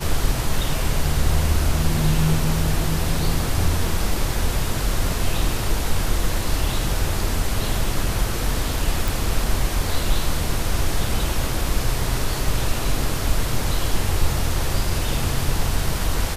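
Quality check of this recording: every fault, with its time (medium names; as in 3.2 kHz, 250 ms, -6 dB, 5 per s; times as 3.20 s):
9.08 s: pop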